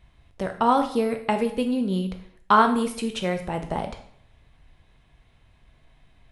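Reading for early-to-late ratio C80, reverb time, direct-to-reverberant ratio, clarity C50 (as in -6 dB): 13.5 dB, 0.60 s, 5.5 dB, 10.0 dB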